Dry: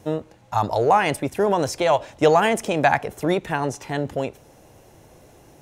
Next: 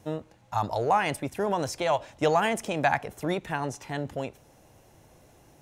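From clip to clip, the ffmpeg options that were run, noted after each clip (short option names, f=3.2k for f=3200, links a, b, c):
-af "equalizer=f=420:w=1.5:g=-3.5,volume=-5.5dB"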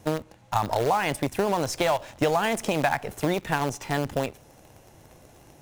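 -filter_complex "[0:a]asplit=2[a][b];[b]acrusher=bits=5:dc=4:mix=0:aa=0.000001,volume=-4.5dB[c];[a][c]amix=inputs=2:normalize=0,acompressor=threshold=-24dB:ratio=6,volume=4dB"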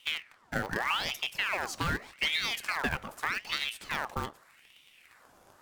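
-af "flanger=delay=2.9:depth=5.2:regen=-88:speed=1.4:shape=sinusoidal,aeval=exprs='val(0)*sin(2*PI*1800*n/s+1800*0.65/0.83*sin(2*PI*0.83*n/s))':c=same"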